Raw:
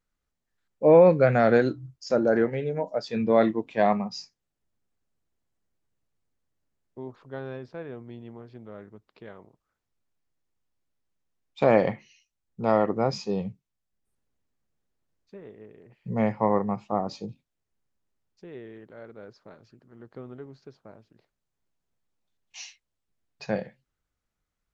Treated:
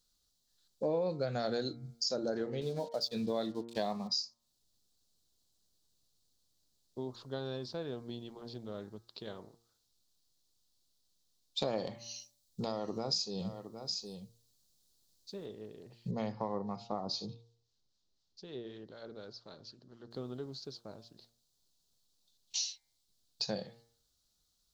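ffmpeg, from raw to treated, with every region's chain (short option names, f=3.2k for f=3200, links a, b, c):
-filter_complex "[0:a]asettb=1/sr,asplit=3[a][b][c];[a]atrim=end=2.614[d];[b]atrim=start=2.61:end=4.08,asetpts=PTS-STARTPTS,afade=t=in:d=0.004:c=qsin,afade=t=out:st=1.466:d=0.004:c=qsin,agate=range=-7dB:threshold=-40dB:ratio=16:release=100:detection=peak,aeval=exprs='sgn(val(0))*max(abs(val(0))-0.00211,0)':c=same[e];[c]atrim=start=4.076[f];[d][e]acrossfade=d=0.004:c1=hsin:c2=qsin[g];[g][f]acrossfade=d=0.004:c1=qsin:c2=hsin,asettb=1/sr,asplit=3[h][i][j];[h]atrim=end=11.874[k];[i]atrim=start=11.87:end=15.46,asetpts=PTS-STARTPTS,afade=t=in:d=0.004:c=qsin,afade=t=out:st=3.586:d=0.004:c=qsin,highshelf=f=5.4k:g=7,acompressor=threshold=-27dB:ratio=2.5:attack=3.2:release=140:knee=1:detection=peak,aecho=1:1:764:0.168,atrim=end_sample=158319[l];[j]atrim=start=15.456[m];[k][l]acrossfade=d=0.004:c1=hsin:c2=qsin[n];[n][m]acrossfade=d=0.004:c1=qsin:c2=hsin,asettb=1/sr,asplit=3[o][p][q];[o]atrim=end=16.114[r];[p]atrim=start=16.11:end=20.11,asetpts=PTS-STARTPTS,afade=t=in:d=0.004:c=qsin,afade=t=out:st=3.996:d=0.004:c=qsin,lowpass=f=6.2k:w=0.5412,lowpass=f=6.2k:w=1.3066,acrossover=split=850[s][t];[s]aeval=exprs='val(0)*(1-0.5/2+0.5/2*cos(2*PI*4*n/s))':c=same[u];[t]aeval=exprs='val(0)*(1-0.5/2-0.5/2*cos(2*PI*4*n/s))':c=same[v];[u][v]amix=inputs=2:normalize=0[w];[q]atrim=start=20.106[x];[r][w]acrossfade=d=0.004:c1=hsin:c2=qsin[y];[y][x]acrossfade=d=0.004:c1=qsin:c2=hsin,highshelf=f=3k:t=q:w=3:g=11.5,bandreject=f=116.4:t=h:w=4,bandreject=f=232.8:t=h:w=4,bandreject=f=349.2:t=h:w=4,bandreject=f=465.6:t=h:w=4,bandreject=f=582:t=h:w=4,bandreject=f=698.4:t=h:w=4,bandreject=f=814.8:t=h:w=4,bandreject=f=931.2:t=h:w=4,bandreject=f=1.0476k:t=h:w=4,bandreject=f=1.164k:t=h:w=4,bandreject=f=1.2804k:t=h:w=4,bandreject=f=1.3968k:t=h:w=4,bandreject=f=1.5132k:t=h:w=4,bandreject=f=1.6296k:t=h:w=4,bandreject=f=1.746k:t=h:w=4,bandreject=f=1.8624k:t=h:w=4,bandreject=f=1.9788k:t=h:w=4,bandreject=f=2.0952k:t=h:w=4,bandreject=f=2.2116k:t=h:w=4,bandreject=f=2.328k:t=h:w=4,acompressor=threshold=-34dB:ratio=4"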